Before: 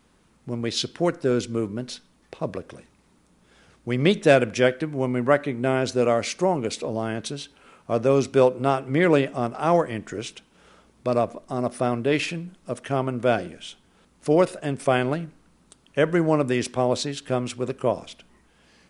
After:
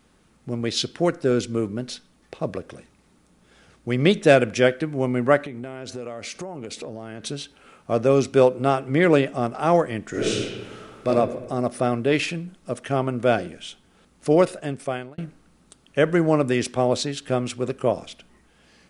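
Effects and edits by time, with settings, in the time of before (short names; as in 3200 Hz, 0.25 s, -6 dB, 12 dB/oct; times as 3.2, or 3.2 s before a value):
5.45–7.27 compressor 8:1, threshold -31 dBFS
10.1–11.07 reverb throw, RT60 1.4 s, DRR -8.5 dB
14.48–15.18 fade out
whole clip: notch 980 Hz, Q 13; gain +1.5 dB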